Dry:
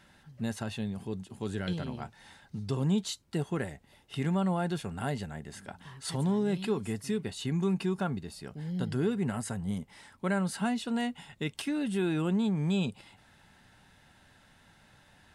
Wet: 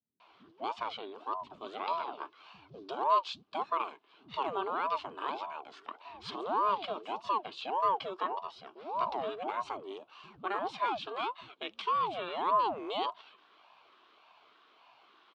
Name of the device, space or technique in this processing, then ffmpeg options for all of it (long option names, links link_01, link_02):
voice changer toy: -filter_complex "[0:a]aeval=exprs='val(0)*sin(2*PI*510*n/s+510*0.65/1.7*sin(2*PI*1.7*n/s))':channel_layout=same,highpass=430,equalizer=frequency=530:width_type=q:width=4:gain=-10,equalizer=frequency=1100:width_type=q:width=4:gain=7,equalizer=frequency=1900:width_type=q:width=4:gain=-9,equalizer=frequency=3000:width_type=q:width=4:gain=4,lowpass=frequency=4200:width=0.5412,lowpass=frequency=4200:width=1.3066,acrossover=split=200[link_01][link_02];[link_02]adelay=200[link_03];[link_01][link_03]amix=inputs=2:normalize=0,volume=2dB"